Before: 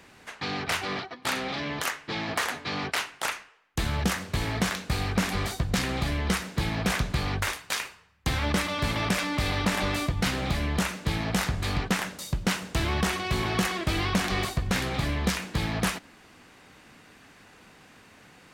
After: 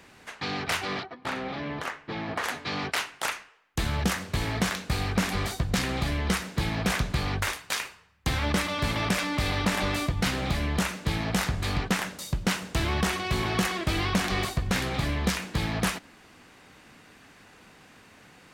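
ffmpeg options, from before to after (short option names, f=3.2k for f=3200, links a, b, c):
-filter_complex "[0:a]asettb=1/sr,asplit=3[a][b][c];[a]atrim=end=1.034[d];[b]atrim=start=1.03:end=2.44,asetpts=PTS-STARTPTS,afade=t=in:d=0.004:c=qsin,afade=t=out:st=1.406:d=0.004:c=qsin,lowpass=f=1.5k:p=1[e];[c]atrim=start=2.436[f];[d][e]acrossfade=d=0.004:c1=hsin:c2=qsin[g];[g][f]acrossfade=d=0.004:c1=qsin:c2=hsin"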